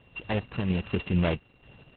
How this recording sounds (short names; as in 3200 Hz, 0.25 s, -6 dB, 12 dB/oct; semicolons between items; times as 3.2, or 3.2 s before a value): a buzz of ramps at a fixed pitch in blocks of 16 samples; random-step tremolo 4.3 Hz; Opus